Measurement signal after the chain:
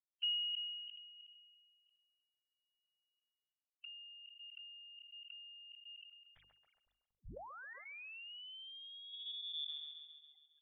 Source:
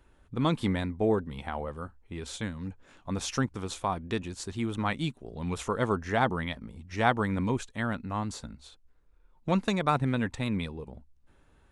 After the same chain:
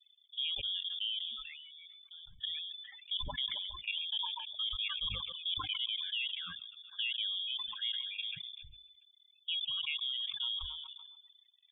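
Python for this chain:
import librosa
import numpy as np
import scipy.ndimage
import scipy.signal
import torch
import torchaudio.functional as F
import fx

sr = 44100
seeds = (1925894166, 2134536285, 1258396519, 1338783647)

p1 = fx.spec_topn(x, sr, count=16)
p2 = fx.env_flanger(p1, sr, rest_ms=4.9, full_db=-29.5)
p3 = fx.level_steps(p2, sr, step_db=16)
p4 = fx.freq_invert(p3, sr, carrier_hz=3500)
p5 = fx.peak_eq(p4, sr, hz=320.0, db=-14.5, octaves=1.3)
p6 = fx.dereverb_blind(p5, sr, rt60_s=1.5)
p7 = fx.low_shelf(p6, sr, hz=73.0, db=6.5)
p8 = fx.hum_notches(p7, sr, base_hz=50, count=6)
p9 = p8 + fx.echo_wet_bandpass(p8, sr, ms=136, feedback_pct=53, hz=640.0, wet_db=-15.5, dry=0)
p10 = fx.sustainer(p9, sr, db_per_s=32.0)
y = p10 * 10.0 ** (-2.5 / 20.0)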